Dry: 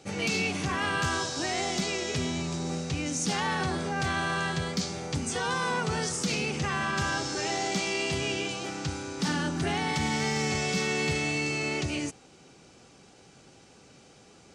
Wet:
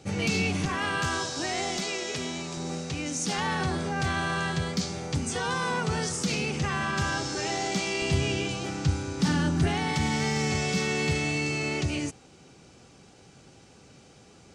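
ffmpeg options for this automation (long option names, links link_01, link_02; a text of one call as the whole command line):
ffmpeg -i in.wav -af "asetnsamples=nb_out_samples=441:pad=0,asendcmd='0.65 equalizer g -0.5;1.77 equalizer g -11;2.57 equalizer g -3.5;3.38 equalizer g 4;8.02 equalizer g 12;9.67 equalizer g 5.5',equalizer=frequency=78:width_type=o:width=2.4:gain=10" out.wav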